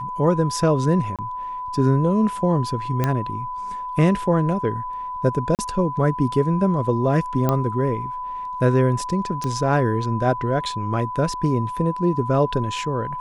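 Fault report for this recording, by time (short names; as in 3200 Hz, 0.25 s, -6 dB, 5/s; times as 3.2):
tone 1000 Hz -27 dBFS
1.16–1.19 gap 27 ms
3.04 pop -8 dBFS
5.55–5.59 gap 38 ms
7.49 pop -8 dBFS
9.44 pop -14 dBFS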